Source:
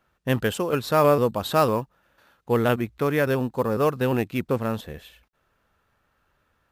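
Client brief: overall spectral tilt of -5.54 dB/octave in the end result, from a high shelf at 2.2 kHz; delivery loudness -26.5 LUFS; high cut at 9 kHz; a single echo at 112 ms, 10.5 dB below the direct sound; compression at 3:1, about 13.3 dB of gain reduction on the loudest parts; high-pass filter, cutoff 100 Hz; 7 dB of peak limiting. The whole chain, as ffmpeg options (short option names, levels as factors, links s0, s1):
-af "highpass=100,lowpass=9000,highshelf=f=2200:g=-5,acompressor=threshold=0.0224:ratio=3,alimiter=level_in=1.41:limit=0.0631:level=0:latency=1,volume=0.708,aecho=1:1:112:0.299,volume=3.55"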